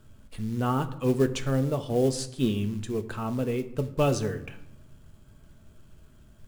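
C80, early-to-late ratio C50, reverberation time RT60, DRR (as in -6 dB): 17.0 dB, 14.5 dB, 0.85 s, 8.0 dB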